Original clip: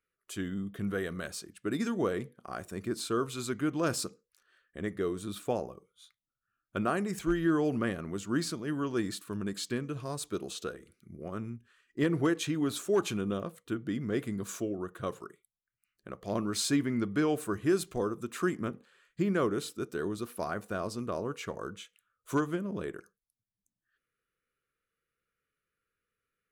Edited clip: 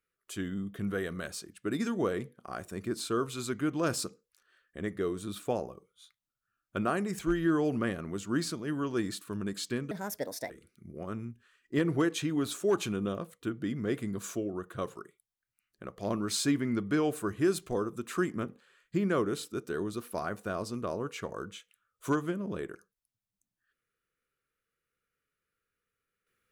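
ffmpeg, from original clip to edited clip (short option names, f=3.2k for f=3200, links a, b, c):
-filter_complex "[0:a]asplit=3[a][b][c];[a]atrim=end=9.914[d];[b]atrim=start=9.91:end=10.75,asetpts=PTS-STARTPTS,asetrate=62622,aresample=44100,atrim=end_sample=26087,asetpts=PTS-STARTPTS[e];[c]atrim=start=10.746[f];[d][e]acrossfade=d=0.004:c1=hsin:c2=hsin[g];[g][f]acrossfade=d=0.004:c1=hsin:c2=hsin"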